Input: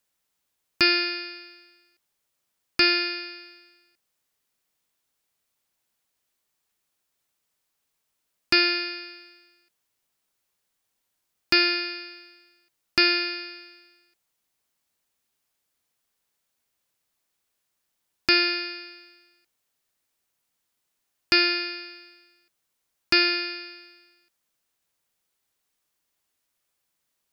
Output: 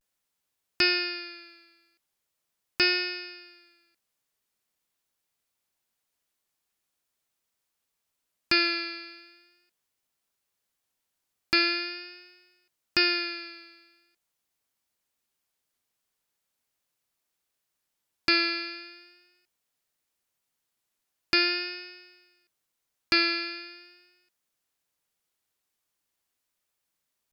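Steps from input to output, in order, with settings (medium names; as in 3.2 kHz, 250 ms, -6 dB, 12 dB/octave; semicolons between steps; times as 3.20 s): vibrato 0.42 Hz 50 cents; trim -3.5 dB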